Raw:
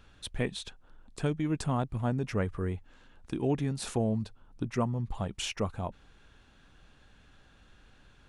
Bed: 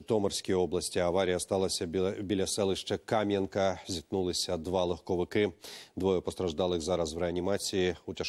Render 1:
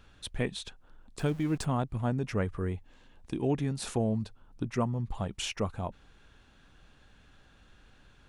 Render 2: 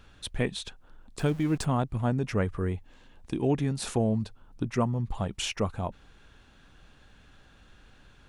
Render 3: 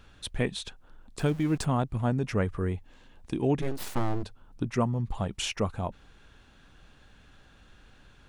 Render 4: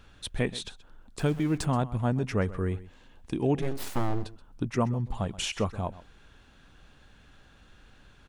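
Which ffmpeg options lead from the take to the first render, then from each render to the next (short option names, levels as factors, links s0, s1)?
-filter_complex "[0:a]asettb=1/sr,asplit=3[s0][s1][s2];[s0]atrim=end=1.194[s3];[s1]atrim=start=1.19:end=1.65,asetpts=PTS-STARTPTS,afade=t=in:d=0.004:c=qsin,afade=t=out:st=0.456:d=0.004:c=qsin,aeval=exprs='val(0)+0.5*0.00631*sgn(val(0))':c=same[s4];[s2]atrim=start=1.646[s5];[s3][s4]acrossfade=d=0.004:c1=hsin:c2=qsin[s6];[s6][s5]acrossfade=d=0.004:c1=qsin:c2=hsin,asettb=1/sr,asplit=3[s7][s8][s9];[s7]atrim=end=2.734[s10];[s8]atrim=start=2.73:end=3.41,asetpts=PTS-STARTPTS,afade=t=in:d=0.004:c=qsin,afade=t=out:st=0.676:d=0.004:c=qsin,equalizer=f=1400:w=4.4:g=-8[s11];[s9]atrim=start=3.406[s12];[s10][s11]acrossfade=d=0.004:c1=hsin:c2=qsin[s13];[s13][s12]acrossfade=d=0.004:c1=qsin:c2=hsin"
-af "volume=1.41"
-filter_complex "[0:a]asplit=3[s0][s1][s2];[s0]afade=t=out:st=3.61:d=0.02[s3];[s1]aeval=exprs='abs(val(0))':c=same,afade=t=in:st=3.61:d=0.02,afade=t=out:st=4.22:d=0.02[s4];[s2]afade=t=in:st=4.22:d=0.02[s5];[s3][s4][s5]amix=inputs=3:normalize=0"
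-af "aecho=1:1:128:0.133"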